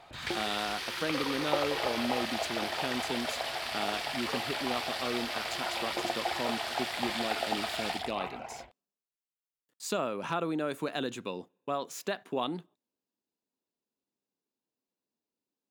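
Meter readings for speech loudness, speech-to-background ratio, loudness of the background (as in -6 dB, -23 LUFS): -36.5 LUFS, -3.0 dB, -33.5 LUFS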